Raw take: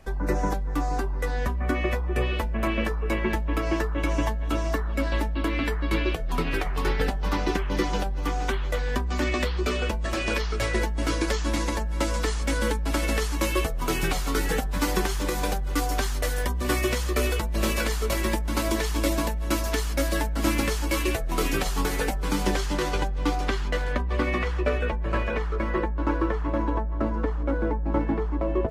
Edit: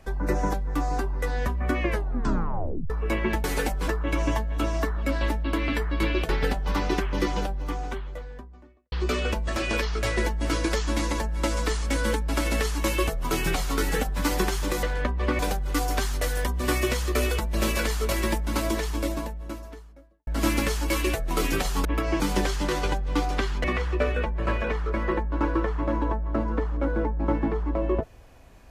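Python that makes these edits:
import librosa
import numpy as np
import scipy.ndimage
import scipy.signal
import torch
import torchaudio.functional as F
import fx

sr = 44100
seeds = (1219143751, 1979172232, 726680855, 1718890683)

y = fx.studio_fade_out(x, sr, start_s=7.63, length_s=1.86)
y = fx.studio_fade_out(y, sr, start_s=18.36, length_s=1.92)
y = fx.edit(y, sr, fx.tape_stop(start_s=1.81, length_s=1.09),
    fx.swap(start_s=3.44, length_s=0.35, other_s=21.86, other_length_s=0.44),
    fx.cut(start_s=6.2, length_s=0.66),
    fx.move(start_s=23.74, length_s=0.56, to_s=15.4), tone=tone)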